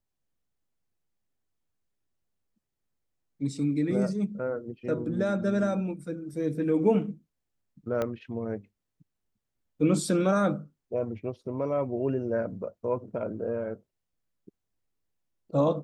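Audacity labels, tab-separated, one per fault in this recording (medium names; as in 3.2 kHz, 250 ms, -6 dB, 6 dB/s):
8.020000	8.020000	pop -17 dBFS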